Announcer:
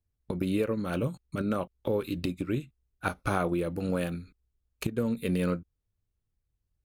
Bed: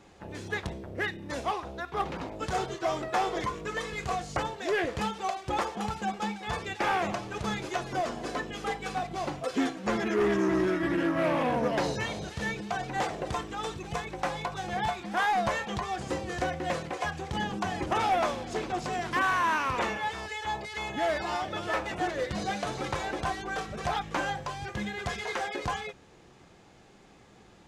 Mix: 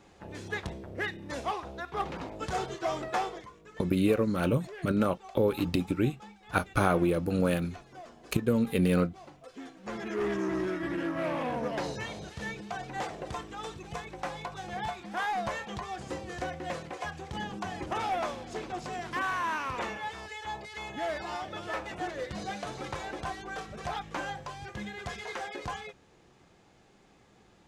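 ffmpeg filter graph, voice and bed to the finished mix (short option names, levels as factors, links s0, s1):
-filter_complex "[0:a]adelay=3500,volume=1.41[s0];[1:a]volume=3.16,afade=t=out:st=3.16:d=0.27:silence=0.177828,afade=t=in:st=9.64:d=0.6:silence=0.251189[s1];[s0][s1]amix=inputs=2:normalize=0"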